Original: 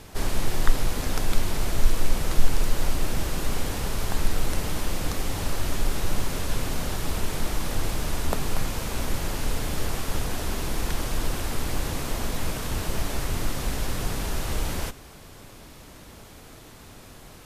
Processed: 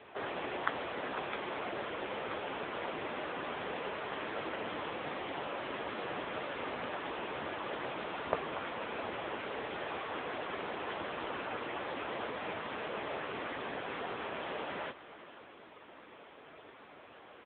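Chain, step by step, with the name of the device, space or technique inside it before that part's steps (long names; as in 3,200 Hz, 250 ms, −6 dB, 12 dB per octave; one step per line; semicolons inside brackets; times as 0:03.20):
satellite phone (band-pass filter 390–3,000 Hz; single-tap delay 486 ms −16.5 dB; level +1 dB; AMR narrowband 6.7 kbit/s 8,000 Hz)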